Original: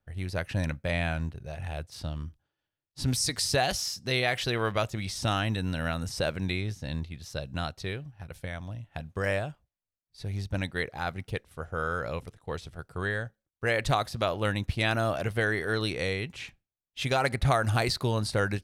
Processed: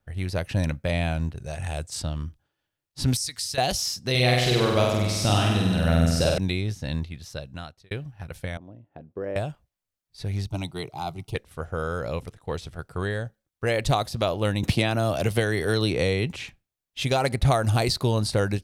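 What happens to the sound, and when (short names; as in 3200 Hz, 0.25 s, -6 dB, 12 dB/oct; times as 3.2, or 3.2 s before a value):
1.37–2.02 bell 7800 Hz +14.5 dB 0.75 oct
3.17–3.58 passive tone stack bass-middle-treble 5-5-5
4.1–6.38 flutter echo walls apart 8.3 m, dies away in 1.2 s
6.96–7.91 fade out
8.57–9.36 band-pass 360 Hz, Q 1.9
10.47–11.35 fixed phaser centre 340 Hz, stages 8
14.63–16.36 three-band squash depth 100%
whole clip: dynamic EQ 1600 Hz, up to -8 dB, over -43 dBFS, Q 1.1; gain +5 dB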